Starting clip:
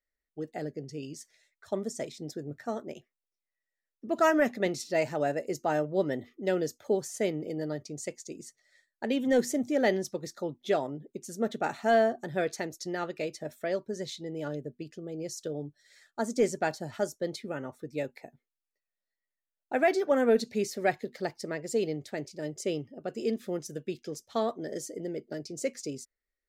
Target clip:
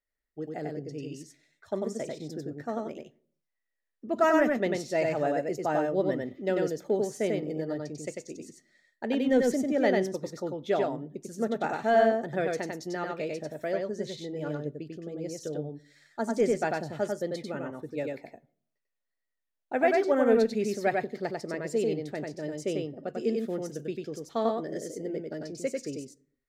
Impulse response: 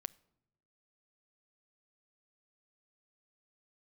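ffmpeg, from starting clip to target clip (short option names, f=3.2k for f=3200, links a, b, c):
-filter_complex "[0:a]highshelf=f=3.6k:g=-7,asplit=2[a][b];[1:a]atrim=start_sample=2205,asetrate=70560,aresample=44100,adelay=95[c];[b][c]afir=irnorm=-1:irlink=0,volume=5dB[d];[a][d]amix=inputs=2:normalize=0"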